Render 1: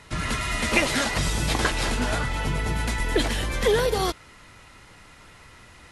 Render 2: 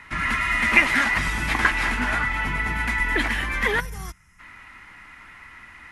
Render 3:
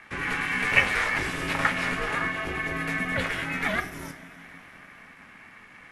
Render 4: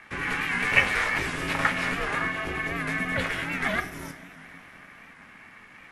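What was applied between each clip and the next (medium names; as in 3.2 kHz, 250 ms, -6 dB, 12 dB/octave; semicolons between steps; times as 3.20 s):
graphic EQ 125/250/500/1000/2000/4000/8000 Hz -6/+4/-10/+5/+12/-6/-6 dB; time-frequency box 3.80–4.40 s, 200–5000 Hz -16 dB; trim -1.5 dB
two-slope reverb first 0.29 s, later 4.4 s, from -19 dB, DRR 5 dB; ring modulator 220 Hz; trim -2.5 dB
warped record 78 rpm, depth 100 cents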